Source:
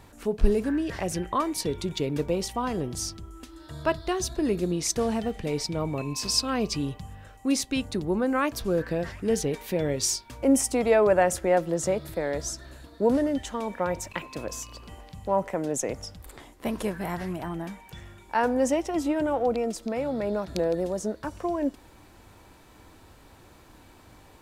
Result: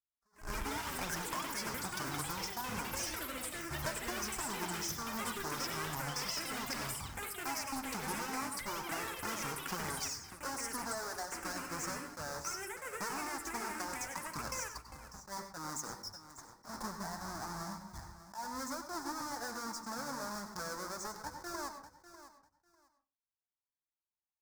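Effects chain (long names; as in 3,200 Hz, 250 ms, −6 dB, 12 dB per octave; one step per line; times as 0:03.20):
each half-wave held at its own peak
drawn EQ curve 200 Hz 0 dB, 510 Hz −4 dB, 900 Hz +12 dB, 1,600 Hz +9 dB, 2,900 Hz −14 dB, 5,200 Hz +14 dB, 10,000 Hz +7 dB
downward compressor 10 to 1, threshold −27 dBFS, peak gain reduction 22.5 dB
flanger 0.28 Hz, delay 0.4 ms, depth 9.1 ms, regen −25%
noise gate −38 dBFS, range −56 dB
repeating echo 597 ms, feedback 18%, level −14 dB
on a send at −8 dB: convolution reverb RT60 0.35 s, pre-delay 90 ms
on the sum: delay with pitch and tempo change per echo 211 ms, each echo +7 semitones, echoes 3
level that may rise only so fast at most 240 dB per second
level −7.5 dB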